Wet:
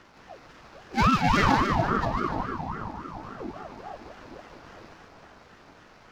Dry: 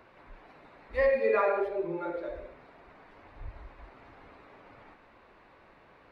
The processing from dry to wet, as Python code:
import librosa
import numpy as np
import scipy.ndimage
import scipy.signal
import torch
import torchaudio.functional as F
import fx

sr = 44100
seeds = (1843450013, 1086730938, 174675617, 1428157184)

p1 = scipy.ndimage.median_filter(x, 15, mode='constant')
p2 = fx.peak_eq(p1, sr, hz=4300.0, db=9.0, octaves=1.4)
p3 = fx.notch(p2, sr, hz=1500.0, q=16.0)
p4 = p3 + fx.echo_split(p3, sr, split_hz=970.0, low_ms=453, high_ms=149, feedback_pct=52, wet_db=-4.5, dry=0)
p5 = fx.ring_lfo(p4, sr, carrier_hz=540.0, swing_pct=50, hz=3.6)
y = p5 * 10.0 ** (6.5 / 20.0)